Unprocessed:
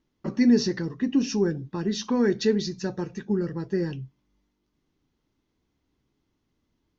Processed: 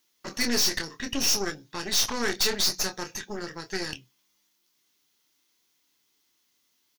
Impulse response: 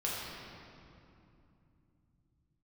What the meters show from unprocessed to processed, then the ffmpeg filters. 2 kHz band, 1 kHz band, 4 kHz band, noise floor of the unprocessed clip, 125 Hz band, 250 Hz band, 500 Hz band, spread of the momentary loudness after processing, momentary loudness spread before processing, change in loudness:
+6.5 dB, +3.5 dB, +10.5 dB, -77 dBFS, -12.5 dB, -12.0 dB, -7.5 dB, 13 LU, 12 LU, -1.0 dB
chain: -filter_complex "[0:a]aderivative,asplit=2[a][b];[b]adelay=26,volume=-7.5dB[c];[a][c]amix=inputs=2:normalize=0,asplit=2[d][e];[e]aeval=exprs='0.0841*sin(PI/2*3.98*val(0)/0.0841)':c=same,volume=-3dB[f];[d][f]amix=inputs=2:normalize=0,aeval=exprs='0.0841*(cos(1*acos(clip(val(0)/0.0841,-1,1)))-cos(1*PI/2))+0.0237*(cos(4*acos(clip(val(0)/0.0841,-1,1)))-cos(4*PI/2))':c=same,volume=2.5dB"

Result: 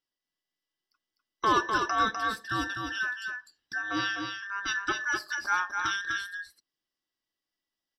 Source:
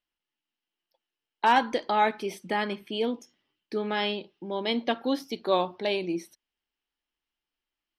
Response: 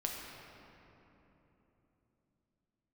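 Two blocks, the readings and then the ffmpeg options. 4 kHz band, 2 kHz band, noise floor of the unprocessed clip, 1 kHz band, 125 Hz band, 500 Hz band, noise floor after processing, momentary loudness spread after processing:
-2.0 dB, +5.5 dB, under -85 dBFS, -2.0 dB, -2.0 dB, -11.5 dB, under -85 dBFS, 11 LU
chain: -af "afftfilt=real='real(if(between(b,1,1012),(2*floor((b-1)/92)+1)*92-b,b),0)':imag='imag(if(between(b,1,1012),(2*floor((b-1)/92)+1)*92-b,b),0)*if(between(b,1,1012),-1,1)':win_size=2048:overlap=0.75,equalizer=f=315:t=o:w=0.33:g=8,equalizer=f=2.5k:t=o:w=0.33:g=-6,equalizer=f=5k:t=o:w=0.33:g=10,aecho=1:1:251:0.562,volume=-3.5dB"

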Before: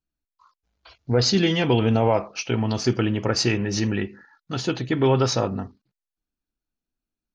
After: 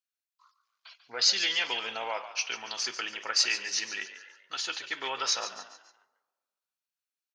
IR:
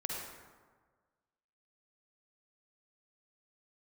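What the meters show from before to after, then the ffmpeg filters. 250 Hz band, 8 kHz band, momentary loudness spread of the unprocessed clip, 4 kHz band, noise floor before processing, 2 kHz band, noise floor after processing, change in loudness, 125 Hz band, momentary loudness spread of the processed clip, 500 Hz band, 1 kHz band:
-29.0 dB, n/a, 10 LU, +0.5 dB, under -85 dBFS, -1.0 dB, under -85 dBFS, -6.5 dB, under -40 dB, 14 LU, -19.0 dB, -8.0 dB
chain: -filter_complex "[0:a]highpass=1.5k,asplit=5[a][b][c][d][e];[b]adelay=142,afreqshift=58,volume=-12dB[f];[c]adelay=284,afreqshift=116,volume=-19.5dB[g];[d]adelay=426,afreqshift=174,volume=-27.1dB[h];[e]adelay=568,afreqshift=232,volume=-34.6dB[i];[a][f][g][h][i]amix=inputs=5:normalize=0,asplit=2[j][k];[1:a]atrim=start_sample=2205,adelay=62[l];[k][l]afir=irnorm=-1:irlink=0,volume=-24dB[m];[j][m]amix=inputs=2:normalize=0"

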